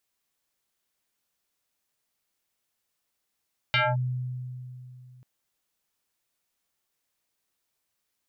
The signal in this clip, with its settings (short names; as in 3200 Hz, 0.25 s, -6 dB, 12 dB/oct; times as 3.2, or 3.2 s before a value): FM tone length 1.49 s, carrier 126 Hz, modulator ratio 5.88, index 4.5, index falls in 0.22 s linear, decay 2.93 s, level -19 dB